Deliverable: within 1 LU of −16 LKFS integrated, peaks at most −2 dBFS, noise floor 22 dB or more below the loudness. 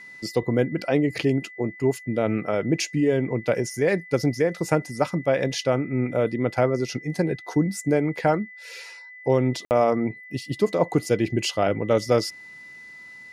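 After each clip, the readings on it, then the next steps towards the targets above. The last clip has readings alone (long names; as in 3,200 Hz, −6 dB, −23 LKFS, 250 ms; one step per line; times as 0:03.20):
number of dropouts 1; longest dropout 59 ms; interfering tone 2,000 Hz; level of the tone −41 dBFS; integrated loudness −24.0 LKFS; sample peak −6.0 dBFS; target loudness −16.0 LKFS
→ repair the gap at 0:09.65, 59 ms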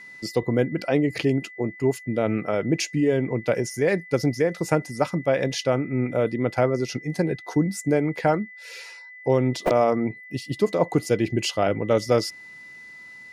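number of dropouts 0; interfering tone 2,000 Hz; level of the tone −41 dBFS
→ notch filter 2,000 Hz, Q 30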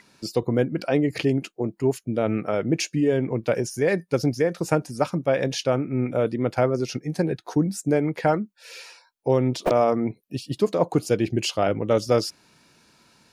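interfering tone none found; integrated loudness −24.0 LKFS; sample peak −6.5 dBFS; target loudness −16.0 LKFS
→ level +8 dB
brickwall limiter −2 dBFS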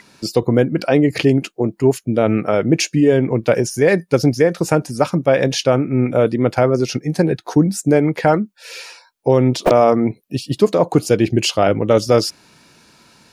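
integrated loudness −16.5 LKFS; sample peak −2.0 dBFS; background noise floor −55 dBFS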